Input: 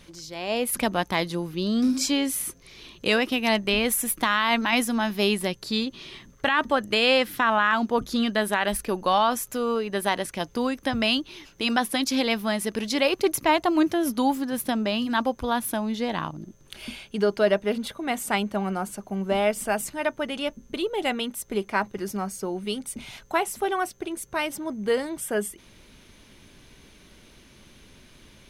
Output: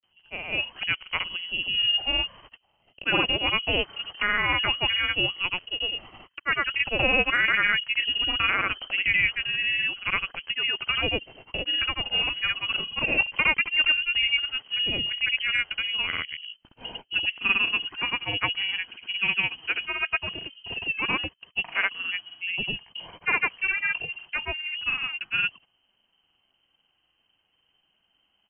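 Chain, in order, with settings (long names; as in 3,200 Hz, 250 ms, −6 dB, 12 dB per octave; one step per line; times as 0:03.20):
voice inversion scrambler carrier 3,100 Hz
noise gate −44 dBFS, range −18 dB
granular cloud, pitch spread up and down by 0 semitones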